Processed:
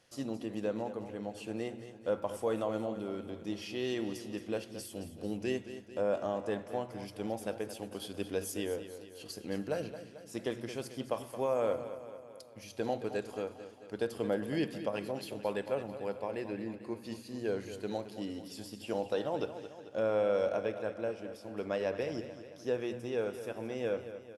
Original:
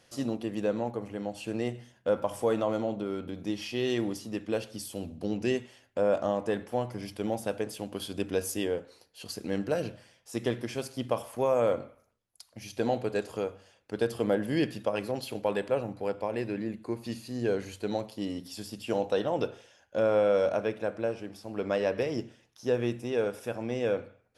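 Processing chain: hum notches 60/120/180/240 Hz; on a send: feedback delay 221 ms, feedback 57%, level -12 dB; on the sum: trim -5.5 dB

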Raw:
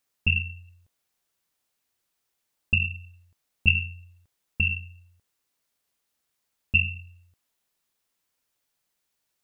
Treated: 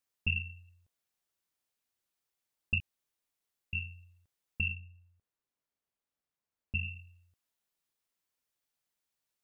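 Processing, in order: 2.80–3.73 s: room tone; 4.72–6.83 s: treble shelf 2.2 kHz -10.5 dB; trim -8.5 dB

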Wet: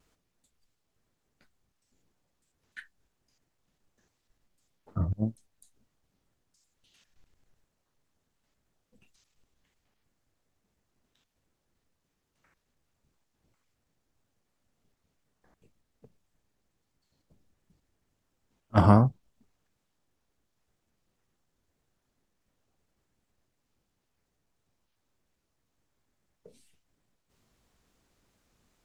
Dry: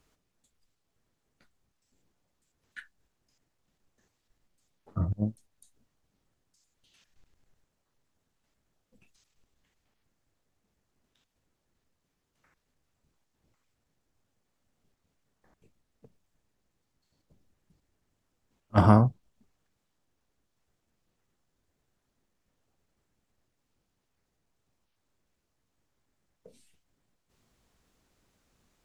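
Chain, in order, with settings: vibrato 2.9 Hz 65 cents

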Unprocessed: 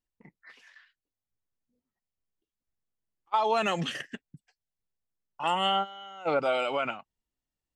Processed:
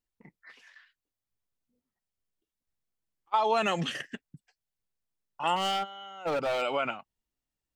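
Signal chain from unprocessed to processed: 5.56–6.62 s: hard clipper -26 dBFS, distortion -12 dB

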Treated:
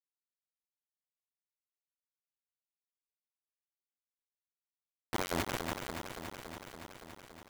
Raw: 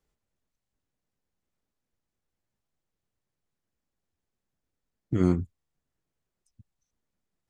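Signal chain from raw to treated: integer overflow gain 15.5 dB; tone controls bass -11 dB, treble -9 dB; peak limiter -22 dBFS, peak gain reduction 8.5 dB; feedback delay 319 ms, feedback 52%, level -22 dB; saturation -18.5 dBFS, distortion -29 dB; on a send at -7 dB: peaking EQ 4.8 kHz -15 dB 1 oct + reverberation RT60 2.8 s, pre-delay 4 ms; on the sum: tremolo 5.6 Hz, depth 52%; reverse; compression 8:1, threshold -45 dBFS, peak gain reduction 14.5 dB; reverse; bit crusher 7-bit; bit-crushed delay 283 ms, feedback 80%, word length 11-bit, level -7 dB; trim +12.5 dB

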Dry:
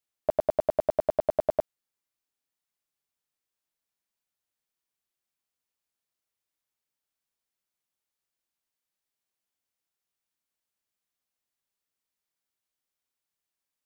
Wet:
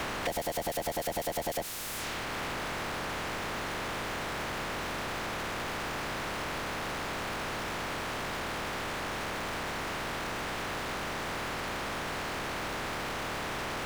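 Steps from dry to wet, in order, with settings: spectral peaks clipped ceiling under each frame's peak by 24 dB; transient shaper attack +10 dB, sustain -6 dB; level-controlled noise filter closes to 1.7 kHz, open at -32.5 dBFS; power-law waveshaper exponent 0.35; peak limiter -21.5 dBFS, peak gain reduction 20.5 dB; three bands compressed up and down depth 70%

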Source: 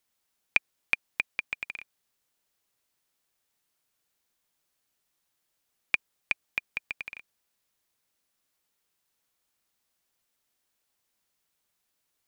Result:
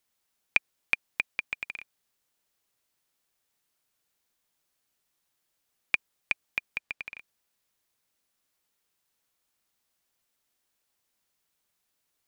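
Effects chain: 6.79–7.19 s: treble shelf 8.3 kHz -8.5 dB

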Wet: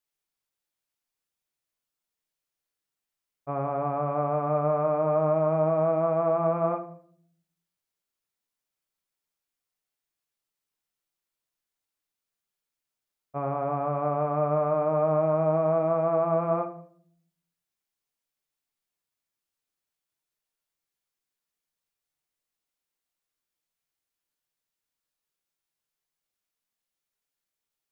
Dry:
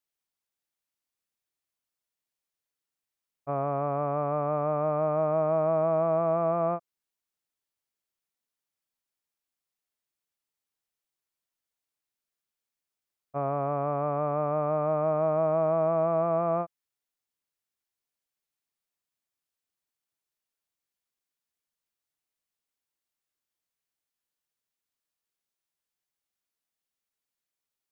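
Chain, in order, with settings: simulated room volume 81 m³, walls mixed, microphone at 0.43 m

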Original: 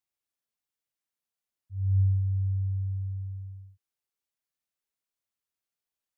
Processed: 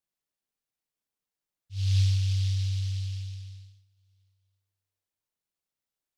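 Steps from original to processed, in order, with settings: dynamic bell 140 Hz, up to +5 dB, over -39 dBFS, Q 1.4; simulated room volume 270 m³, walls mixed, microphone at 0.47 m; delay time shaken by noise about 3.9 kHz, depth 0.21 ms

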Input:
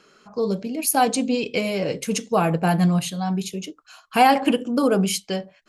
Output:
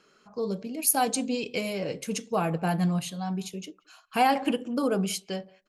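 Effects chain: 0.74–1.73 s: treble shelf 6.4 kHz +8 dB; speakerphone echo 180 ms, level -26 dB; trim -7 dB

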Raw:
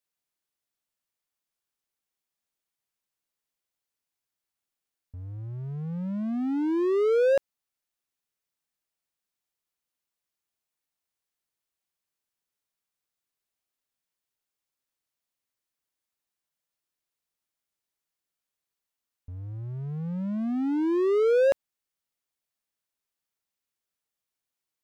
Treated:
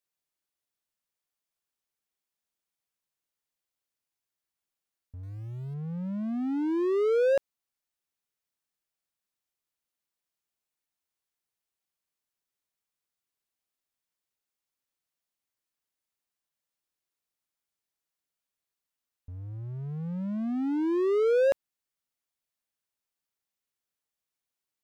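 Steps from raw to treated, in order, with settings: 5.23–5.74 s: small samples zeroed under -53.5 dBFS; trim -2 dB

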